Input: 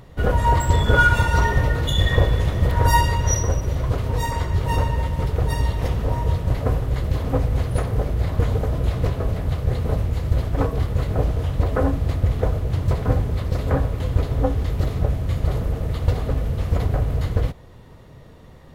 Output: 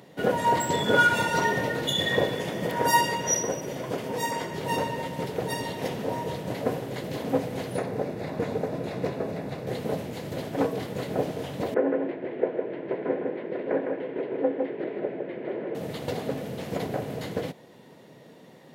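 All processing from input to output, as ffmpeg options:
-filter_complex "[0:a]asettb=1/sr,asplit=3[s0][s1][s2];[s0]atrim=end=2.344[s3];[s1]atrim=start=2.34:end=4.58,asetpts=PTS-STARTPTS,afade=t=in:d=0.004:c=qsin,afade=t=out:st=2.236:d=0.004:c=qsin,equalizer=f=94:t=o:w=0.65:g=-7,bandreject=f=4000:w=9.4[s4];[s2]atrim=start=4.576[s5];[s3][s4]acrossfade=d=0.004:c1=hsin:c2=qsin[s6];[s6][s5]acrossfade=d=0.004:c1=qsin:c2=hsin,asettb=1/sr,asplit=3[s7][s8][s9];[s7]atrim=end=7.764[s10];[s8]atrim=start=7.76:end=9.67,asetpts=PTS-STARTPTS,afade=t=in:d=0.004:c=qsin,afade=t=out:st=1.906:d=0.004:c=qsin,highshelf=f=5300:g=-9.5,bandreject=f=3100:w=6.4[s11];[s9]atrim=start=9.666[s12];[s10][s11]acrossfade=d=0.004:c1=hsin:c2=qsin[s13];[s13][s12]acrossfade=d=0.004:c1=qsin:c2=hsin,asettb=1/sr,asplit=3[s14][s15][s16];[s14]atrim=end=11.744[s17];[s15]atrim=start=11.74:end=15.75,asetpts=PTS-STARTPTS,afade=t=in:d=0.004:c=qsin,afade=t=out:st=4.006:d=0.004:c=qsin,highpass=330,equalizer=f=360:t=q:w=4:g=8,equalizer=f=780:t=q:w=4:g=-6,equalizer=f=1200:t=q:w=4:g=-9,lowpass=f=2200:w=0.5412,lowpass=f=2200:w=1.3066,aecho=1:1:157:0.596,atrim=end_sample=176841[s18];[s16]atrim=start=15.746[s19];[s17][s18]acrossfade=d=0.004:c1=hsin:c2=qsin[s20];[s20][s19]acrossfade=d=0.004:c1=qsin:c2=hsin,highpass=f=180:w=0.5412,highpass=f=180:w=1.3066,equalizer=f=1200:w=3.3:g=-9"

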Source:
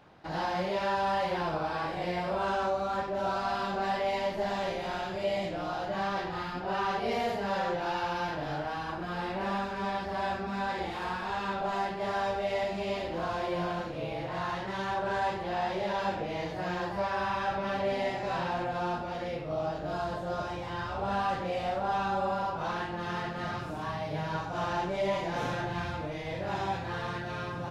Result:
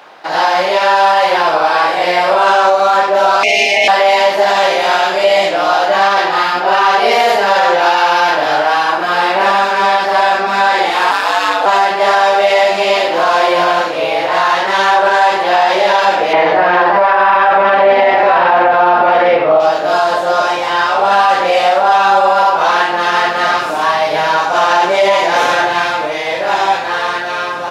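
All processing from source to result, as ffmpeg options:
-filter_complex "[0:a]asettb=1/sr,asplit=3[s0][s1][s2];[s0]atrim=end=3.434[s3];[s1]atrim=start=3.43:end=3.88,asetpts=PTS-STARTPTS,afade=t=in:d=0.004:c=qsin,afade=t=out:st=0.446:d=0.004:c=qsin,acontrast=69,aeval=exprs='val(0)*sin(2*PI*1400*n/s)':c=same,asuperstop=centerf=1300:order=8:qfactor=0.95[s4];[s2]atrim=start=3.876[s5];[s3][s4]acrossfade=d=0.004:c1=hsin:c2=qsin[s6];[s6][s5]acrossfade=d=0.004:c1=qsin:c2=hsin,asettb=1/sr,asplit=3[s7][s8][s9];[s7]atrim=end=11.114[s10];[s8]atrim=start=11.11:end=11.66,asetpts=PTS-STARTPTS,afade=t=in:d=0.004:c=qsin,afade=t=out:st=0.546:d=0.004:c=qsin,highshelf=f=5900:g=10.5,aeval=exprs='val(0)*sin(2*PI*96*n/s)':c=same[s11];[s9]atrim=start=11.656[s12];[s10][s11]acrossfade=d=0.004:c1=hsin:c2=qsin[s13];[s13][s12]acrossfade=d=0.004:c1=qsin:c2=hsin,asettb=1/sr,asplit=3[s14][s15][s16];[s14]atrim=end=16.334[s17];[s15]atrim=start=16.33:end=19.6,asetpts=PTS-STARTPTS,afade=t=in:d=0.004:c=qsin,afade=t=out:st=3.266:d=0.004:c=qsin,acontrast=72,lowpass=2100[s18];[s16]atrim=start=19.596[s19];[s17][s18]acrossfade=d=0.004:c1=hsin:c2=qsin[s20];[s20][s19]acrossfade=d=0.004:c1=qsin:c2=hsin,highpass=580,dynaudnorm=f=310:g=13:m=1.41,alimiter=level_in=13.3:limit=0.891:release=50:level=0:latency=1,volume=0.891"

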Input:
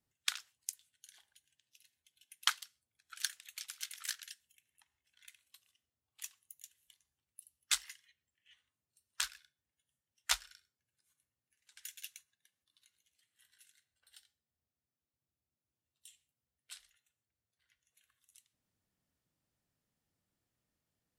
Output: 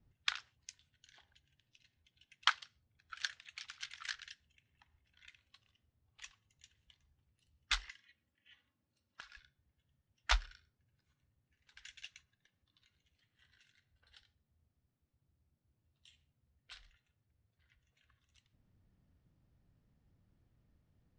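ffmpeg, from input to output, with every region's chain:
-filter_complex "[0:a]asettb=1/sr,asplit=3[s0][s1][s2];[s0]atrim=end=7.904[s3];[s1]atrim=start=7.9:end=9.37,asetpts=PTS-STARTPTS,afade=t=in:d=0.004:c=qsin,afade=t=out:st=1.466:d=0.004:c=qsin,highpass=130,aecho=1:1:3.6:0.44,atrim=end_sample=64827,acompressor=threshold=0.00355:ratio=10:attack=3.2:release=140:knee=1:detection=peak[s4];[s2]atrim=start=9.366[s5];[s3][s4]acrossfade=d=0.004:c1=hsin:c2=qsin[s6];[s6][s5]acrossfade=d=0.004:c1=qsin:c2=hsin,lowpass=f=6300:w=0.5412,lowpass=f=6300:w=1.3066,aemphasis=mode=reproduction:type=riaa,volume=1.78"

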